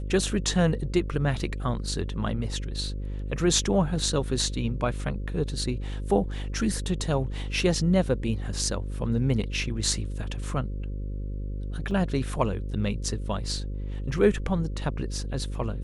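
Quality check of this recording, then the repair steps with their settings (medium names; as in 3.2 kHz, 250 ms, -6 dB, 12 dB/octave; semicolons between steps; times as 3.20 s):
buzz 50 Hz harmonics 11 -32 dBFS
11.91 s: dropout 2.9 ms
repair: de-hum 50 Hz, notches 11; interpolate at 11.91 s, 2.9 ms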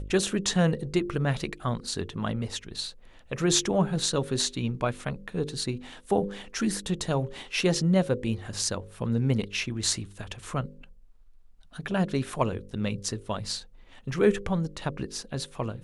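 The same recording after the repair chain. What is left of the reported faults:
nothing left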